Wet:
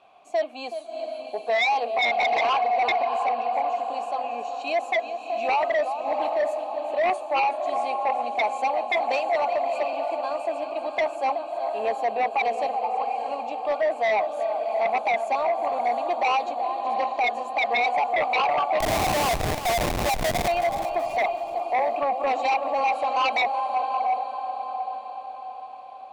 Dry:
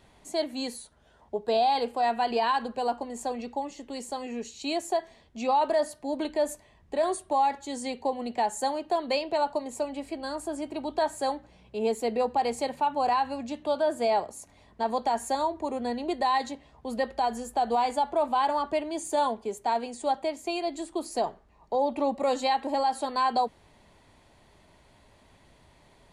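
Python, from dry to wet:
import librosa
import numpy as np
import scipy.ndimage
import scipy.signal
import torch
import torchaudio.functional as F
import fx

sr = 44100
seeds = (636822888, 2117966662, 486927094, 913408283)

y = fx.vowel_filter(x, sr, vowel='a')
y = fx.peak_eq(y, sr, hz=500.0, db=-3.0, octaves=2.1)
y = fx.auto_wah(y, sr, base_hz=530.0, top_hz=2400.0, q=18.0, full_db=-26.5, direction='up', at=(12.78, 13.26))
y = fx.echo_diffused(y, sr, ms=675, feedback_pct=48, wet_db=-8.0)
y = fx.schmitt(y, sr, flips_db=-40.5, at=(18.8, 20.48))
y = fx.echo_feedback(y, sr, ms=375, feedback_pct=35, wet_db=-12)
y = fx.fold_sine(y, sr, drive_db=15, ceiling_db=-16.5)
y = fx.low_shelf(y, sr, hz=240.0, db=-5.5)
y = y * librosa.db_to_amplitude(-1.5)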